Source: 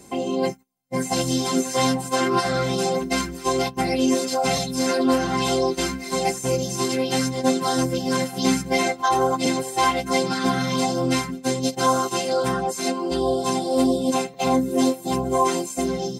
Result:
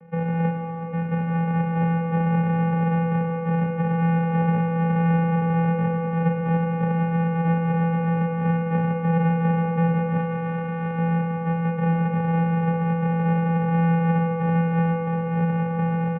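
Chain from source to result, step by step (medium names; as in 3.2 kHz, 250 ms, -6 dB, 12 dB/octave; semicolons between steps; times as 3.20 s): speakerphone echo 370 ms, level -12 dB; in parallel at -1 dB: peak limiter -18 dBFS, peak gain reduction 11 dB; 14.82–15.58 s: on the sum: bass shelf 210 Hz -11 dB; sample-and-hold 38×; 10.18–10.98 s: bass shelf 460 Hz -10 dB; vocoder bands 4, saw 328 Hz; mistuned SSB -160 Hz 270–2500 Hz; on a send at -3.5 dB: reverberation RT60 3.8 s, pre-delay 33 ms; on the sum: trim -3.5 dB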